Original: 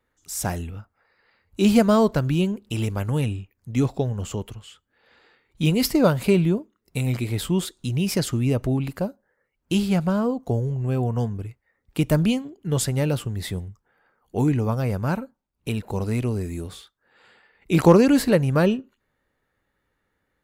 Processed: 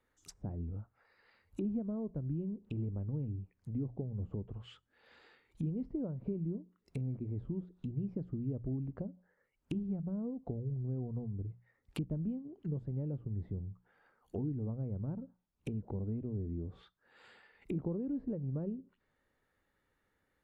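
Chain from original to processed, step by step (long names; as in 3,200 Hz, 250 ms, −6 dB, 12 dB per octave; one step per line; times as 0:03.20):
downward compressor 4 to 1, threshold −29 dBFS, peak gain reduction 17 dB
treble cut that deepens with the level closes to 360 Hz, closed at −31 dBFS
mains-hum notches 60/120/180 Hz
level −5 dB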